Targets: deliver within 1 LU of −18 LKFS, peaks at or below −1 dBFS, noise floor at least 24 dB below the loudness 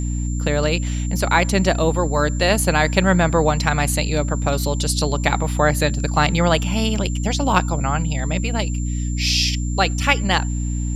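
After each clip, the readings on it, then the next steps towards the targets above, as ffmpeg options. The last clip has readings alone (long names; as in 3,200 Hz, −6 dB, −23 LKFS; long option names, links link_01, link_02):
mains hum 60 Hz; hum harmonics up to 300 Hz; level of the hum −20 dBFS; interfering tone 7,300 Hz; level of the tone −35 dBFS; integrated loudness −19.5 LKFS; sample peak −1.0 dBFS; target loudness −18.0 LKFS
→ -af "bandreject=frequency=60:width_type=h:width=6,bandreject=frequency=120:width_type=h:width=6,bandreject=frequency=180:width_type=h:width=6,bandreject=frequency=240:width_type=h:width=6,bandreject=frequency=300:width_type=h:width=6"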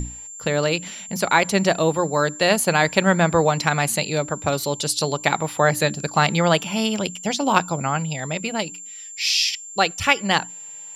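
mains hum none found; interfering tone 7,300 Hz; level of the tone −35 dBFS
→ -af "bandreject=frequency=7300:width=30"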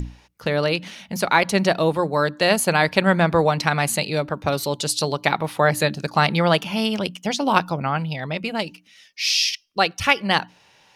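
interfering tone none found; integrated loudness −21.0 LKFS; sample peak −1.5 dBFS; target loudness −18.0 LKFS
→ -af "volume=3dB,alimiter=limit=-1dB:level=0:latency=1"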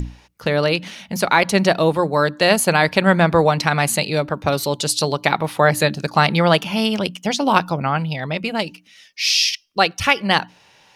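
integrated loudness −18.0 LKFS; sample peak −1.0 dBFS; background noise floor −53 dBFS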